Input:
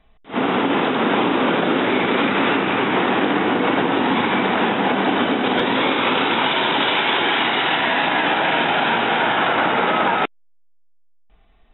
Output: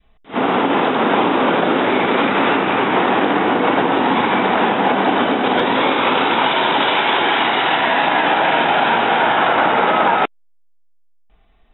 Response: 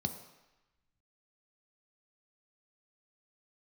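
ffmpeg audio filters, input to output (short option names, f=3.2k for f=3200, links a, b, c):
-af "adynamicequalizer=threshold=0.0224:dfrequency=780:dqfactor=0.77:tfrequency=780:tqfactor=0.77:attack=5:release=100:ratio=0.375:range=2.5:mode=boostabove:tftype=bell"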